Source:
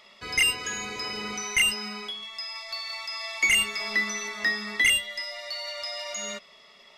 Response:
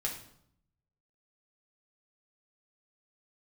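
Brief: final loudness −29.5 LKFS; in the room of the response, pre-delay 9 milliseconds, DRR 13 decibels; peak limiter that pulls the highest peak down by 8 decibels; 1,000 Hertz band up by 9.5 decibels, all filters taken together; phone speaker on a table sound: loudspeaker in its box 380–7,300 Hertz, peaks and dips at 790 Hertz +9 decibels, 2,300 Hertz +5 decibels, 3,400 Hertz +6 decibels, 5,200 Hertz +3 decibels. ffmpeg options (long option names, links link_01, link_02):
-filter_complex "[0:a]equalizer=frequency=1000:width_type=o:gain=8,alimiter=limit=-18dB:level=0:latency=1,asplit=2[link_01][link_02];[1:a]atrim=start_sample=2205,adelay=9[link_03];[link_02][link_03]afir=irnorm=-1:irlink=0,volume=-16dB[link_04];[link_01][link_04]amix=inputs=2:normalize=0,highpass=frequency=380:width=0.5412,highpass=frequency=380:width=1.3066,equalizer=frequency=790:width_type=q:width=4:gain=9,equalizer=frequency=2300:width_type=q:width=4:gain=5,equalizer=frequency=3400:width_type=q:width=4:gain=6,equalizer=frequency=5200:width_type=q:width=4:gain=3,lowpass=frequency=7300:width=0.5412,lowpass=frequency=7300:width=1.3066,volume=-5dB"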